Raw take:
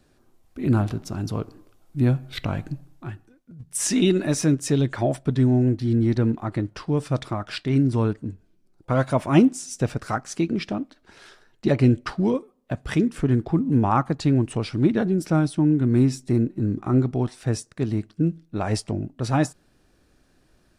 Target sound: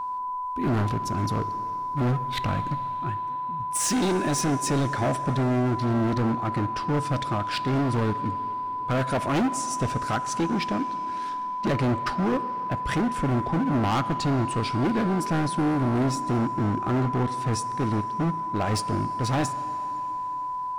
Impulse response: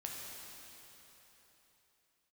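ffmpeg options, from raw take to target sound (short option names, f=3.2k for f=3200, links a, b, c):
-filter_complex "[0:a]aeval=exprs='val(0)+0.0316*sin(2*PI*1000*n/s)':c=same,volume=22.5dB,asoftclip=hard,volume=-22.5dB,asplit=2[a][b];[1:a]atrim=start_sample=2205,lowshelf=f=150:g=-8.5,highshelf=f=7.4k:g=-8.5[c];[b][c]afir=irnorm=-1:irlink=0,volume=-7.5dB[d];[a][d]amix=inputs=2:normalize=0"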